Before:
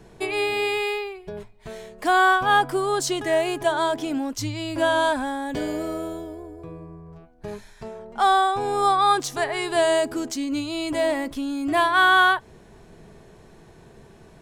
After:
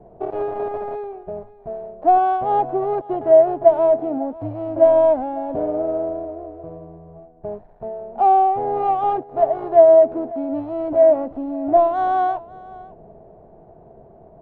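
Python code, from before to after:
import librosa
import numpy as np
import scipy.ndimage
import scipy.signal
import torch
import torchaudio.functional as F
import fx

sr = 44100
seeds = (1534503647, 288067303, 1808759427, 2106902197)

p1 = fx.dead_time(x, sr, dead_ms=0.25)
p2 = fx.lowpass_res(p1, sr, hz=680.0, q=4.9)
p3 = p2 + fx.echo_single(p2, sr, ms=550, db=-20.0, dry=0)
y = F.gain(torch.from_numpy(p3), -1.0).numpy()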